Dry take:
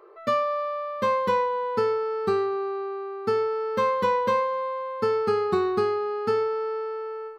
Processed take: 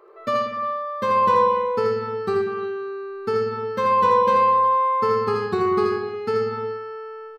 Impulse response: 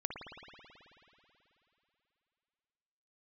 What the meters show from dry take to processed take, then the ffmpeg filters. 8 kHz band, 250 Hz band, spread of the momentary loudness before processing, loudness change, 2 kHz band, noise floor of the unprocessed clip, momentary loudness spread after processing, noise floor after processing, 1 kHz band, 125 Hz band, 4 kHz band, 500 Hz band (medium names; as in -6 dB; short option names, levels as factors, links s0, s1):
no reading, +4.0 dB, 7 LU, +4.5 dB, +2.5 dB, -36 dBFS, 12 LU, -38 dBFS, +7.0 dB, +6.0 dB, +2.0 dB, +2.0 dB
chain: -filter_complex "[0:a]asplit=2[s0][s1];[s1]adelay=63,lowpass=f=4600:p=1,volume=0.501,asplit=2[s2][s3];[s3]adelay=63,lowpass=f=4600:p=1,volume=0.48,asplit=2[s4][s5];[s5]adelay=63,lowpass=f=4600:p=1,volume=0.48,asplit=2[s6][s7];[s7]adelay=63,lowpass=f=4600:p=1,volume=0.48,asplit=2[s8][s9];[s9]adelay=63,lowpass=f=4600:p=1,volume=0.48,asplit=2[s10][s11];[s11]adelay=63,lowpass=f=4600:p=1,volume=0.48[s12];[s0][s2][s4][s6][s8][s10][s12]amix=inputs=7:normalize=0,asplit=2[s13][s14];[1:a]atrim=start_sample=2205,afade=t=out:st=0.35:d=0.01,atrim=end_sample=15876,adelay=81[s15];[s14][s15]afir=irnorm=-1:irlink=0,volume=0.708[s16];[s13][s16]amix=inputs=2:normalize=0"